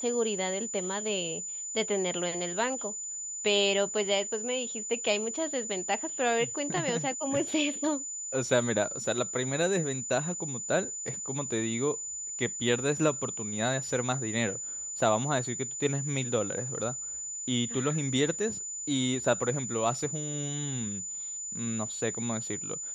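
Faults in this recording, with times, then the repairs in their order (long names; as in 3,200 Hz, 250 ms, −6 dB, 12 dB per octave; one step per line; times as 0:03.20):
whistle 7,000 Hz −35 dBFS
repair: notch filter 7,000 Hz, Q 30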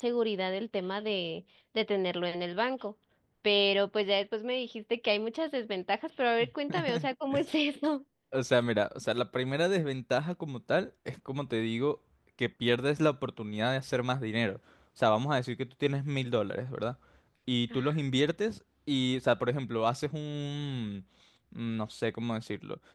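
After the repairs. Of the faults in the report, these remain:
none of them is left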